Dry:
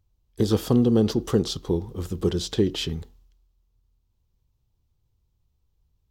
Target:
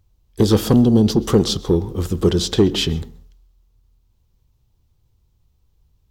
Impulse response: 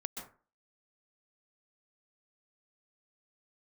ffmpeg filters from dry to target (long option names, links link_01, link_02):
-filter_complex "[0:a]asettb=1/sr,asplit=3[link_01][link_02][link_03];[link_01]atrim=end=0.734[link_04];[link_02]atrim=start=0.73:end=1.16,asetpts=PTS-STARTPTS,afade=type=in:duration=0.004:curve=qsin,afade=type=out:start_time=0.426:duration=0.004:curve=qsin,acrossover=split=370|3000[link_05][link_06][link_07];[link_06]acompressor=threshold=-38dB:ratio=3[link_08];[link_05][link_08][link_07]amix=inputs=3:normalize=0[link_09];[link_03]atrim=start=1.156[link_10];[link_04][link_09]acrossfade=duration=0.004:curve1=hsin:curve2=qsin[link_11];[link_11][link_10]acrossfade=duration=0.004:curve1=qsin:curve2=hsin,asoftclip=type=tanh:threshold=-13dB,asplit=2[link_12][link_13];[1:a]atrim=start_sample=2205[link_14];[link_13][link_14]afir=irnorm=-1:irlink=0,volume=-14dB[link_15];[link_12][link_15]amix=inputs=2:normalize=0,volume=7.5dB"